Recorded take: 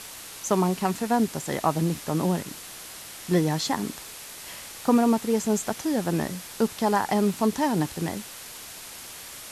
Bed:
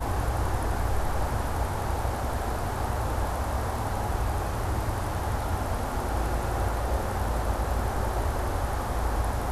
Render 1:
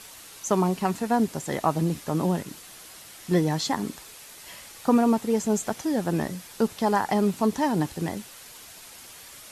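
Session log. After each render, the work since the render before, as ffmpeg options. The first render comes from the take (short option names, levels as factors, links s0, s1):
-af "afftdn=nr=6:nf=-42"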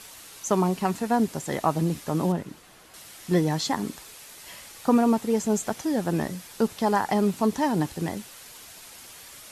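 -filter_complex "[0:a]asettb=1/sr,asplit=3[s0][s1][s2];[s0]atrim=end=2.324[s3];[s1]atrim=start=2.32:end=2.94,asetpts=PTS-STARTPTS,afade=t=in:d=0.004:c=qsin,afade=t=out:st=0.616:d=0.004:c=qsin,highshelf=f=2900:g=-11.5[s4];[s2]atrim=start=2.936[s5];[s3][s4]acrossfade=d=0.004:c1=hsin:c2=qsin[s6];[s6][s5]acrossfade=d=0.004:c1=qsin:c2=hsin"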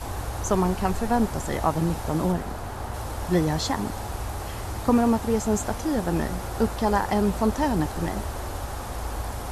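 -filter_complex "[1:a]volume=0.631[s0];[0:a][s0]amix=inputs=2:normalize=0"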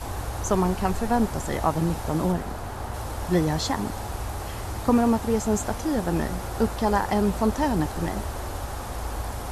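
-af anull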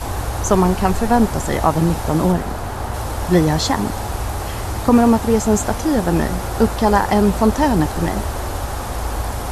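-af "volume=2.51,alimiter=limit=0.794:level=0:latency=1"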